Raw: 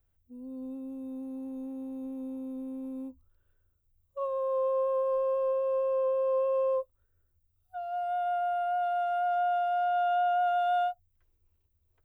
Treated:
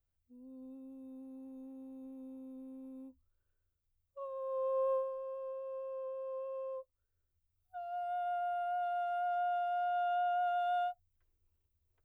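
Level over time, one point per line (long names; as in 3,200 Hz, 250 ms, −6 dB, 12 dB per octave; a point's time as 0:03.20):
0:04.34 −11 dB
0:04.93 −3 dB
0:05.14 −14 dB
0:06.81 −14 dB
0:07.76 −6.5 dB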